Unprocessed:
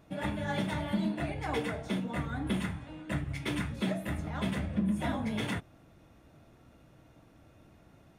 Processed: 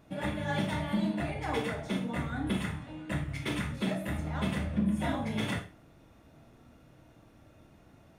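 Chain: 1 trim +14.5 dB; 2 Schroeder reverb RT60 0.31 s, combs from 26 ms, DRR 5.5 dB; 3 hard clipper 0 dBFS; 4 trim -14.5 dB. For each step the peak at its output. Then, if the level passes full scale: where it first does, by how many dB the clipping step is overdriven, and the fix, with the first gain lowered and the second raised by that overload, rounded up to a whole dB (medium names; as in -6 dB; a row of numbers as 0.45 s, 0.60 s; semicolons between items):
-4.0 dBFS, -3.0 dBFS, -3.0 dBFS, -17.5 dBFS; nothing clips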